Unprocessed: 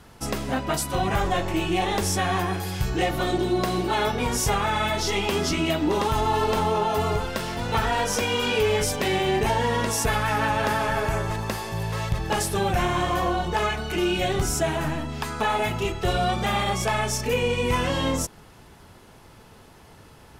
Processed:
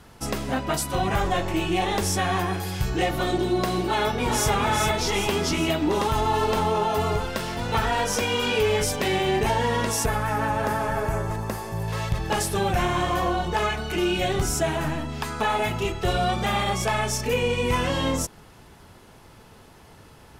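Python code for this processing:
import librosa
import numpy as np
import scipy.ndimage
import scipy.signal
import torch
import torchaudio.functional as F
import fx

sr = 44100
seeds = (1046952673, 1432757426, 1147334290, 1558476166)

y = fx.echo_throw(x, sr, start_s=3.86, length_s=0.65, ms=400, feedback_pct=55, wet_db=-4.5)
y = fx.peak_eq(y, sr, hz=3400.0, db=-9.0, octaves=1.7, at=(10.06, 11.88))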